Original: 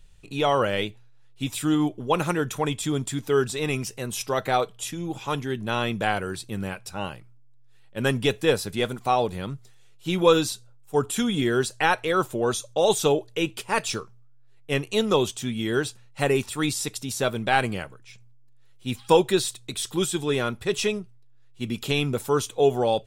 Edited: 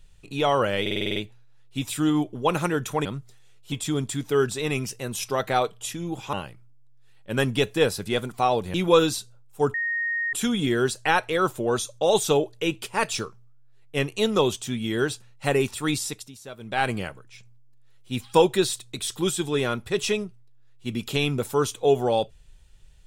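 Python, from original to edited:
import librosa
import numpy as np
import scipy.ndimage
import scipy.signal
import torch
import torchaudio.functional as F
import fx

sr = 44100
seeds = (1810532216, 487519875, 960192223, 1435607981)

y = fx.edit(x, sr, fx.stutter(start_s=0.81, slice_s=0.05, count=8),
    fx.cut(start_s=5.31, length_s=1.69),
    fx.move(start_s=9.41, length_s=0.67, to_s=2.7),
    fx.insert_tone(at_s=11.08, length_s=0.59, hz=1860.0, db=-23.5),
    fx.fade_down_up(start_s=16.74, length_s=0.94, db=-15.5, fade_s=0.36), tone=tone)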